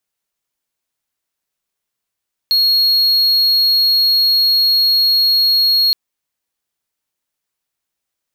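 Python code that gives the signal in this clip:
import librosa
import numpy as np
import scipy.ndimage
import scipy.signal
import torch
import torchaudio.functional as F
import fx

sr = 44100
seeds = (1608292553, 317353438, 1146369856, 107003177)

y = 10.0 ** (-8.0 / 20.0) * (1.0 - 4.0 * np.abs(np.mod(4300.0 * (np.arange(round(3.42 * sr)) / sr) + 0.25, 1.0) - 0.5))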